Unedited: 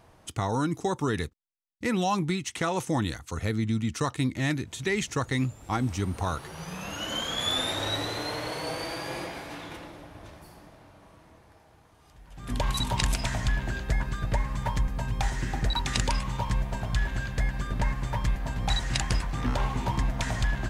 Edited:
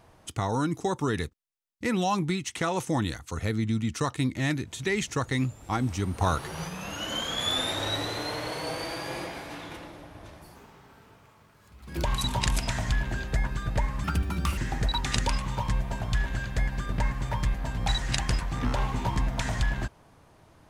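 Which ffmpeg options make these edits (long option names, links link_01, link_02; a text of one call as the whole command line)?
ffmpeg -i in.wav -filter_complex "[0:a]asplit=7[link_01][link_02][link_03][link_04][link_05][link_06][link_07];[link_01]atrim=end=6.212[link_08];[link_02]atrim=start=6.208:end=6.682,asetpts=PTS-STARTPTS,volume=4.5dB[link_09];[link_03]atrim=start=6.678:end=10.564[link_10];[link_04]atrim=start=10.56:end=12.6,asetpts=PTS-STARTPTS,asetrate=60858,aresample=44100,atrim=end_sample=65191,asetpts=PTS-STARTPTS[link_11];[link_05]atrim=start=12.596:end=14.604[link_12];[link_06]atrim=start=14.6:end=15.39,asetpts=PTS-STARTPTS,asetrate=64827,aresample=44100[link_13];[link_07]atrim=start=15.386[link_14];[link_08][link_09]acrossfade=duration=0.004:curve1=hsin:curve2=hsin[link_15];[link_15][link_10]acrossfade=duration=0.004:curve1=hsin:curve2=hsin[link_16];[link_16][link_11]acrossfade=duration=0.004:curve1=hsin:curve2=hsin[link_17];[link_17][link_12]acrossfade=duration=0.004:curve1=hsin:curve2=hsin[link_18];[link_18][link_13]acrossfade=duration=0.004:curve1=hsin:curve2=hsin[link_19];[link_19][link_14]acrossfade=duration=0.004:curve1=hsin:curve2=hsin" out.wav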